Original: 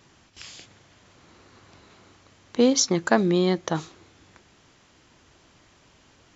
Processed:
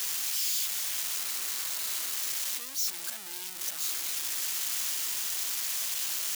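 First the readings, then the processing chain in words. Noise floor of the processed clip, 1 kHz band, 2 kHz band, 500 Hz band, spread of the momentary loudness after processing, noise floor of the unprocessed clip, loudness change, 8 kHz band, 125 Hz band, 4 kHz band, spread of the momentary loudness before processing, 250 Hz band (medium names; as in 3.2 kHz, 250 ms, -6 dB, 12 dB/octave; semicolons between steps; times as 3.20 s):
-40 dBFS, -13.0 dB, -4.5 dB, -28.0 dB, 4 LU, -58 dBFS, -7.0 dB, no reading, under -30 dB, +1.5 dB, 13 LU, -32.5 dB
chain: one-bit comparator; differentiator; attacks held to a fixed rise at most 210 dB/s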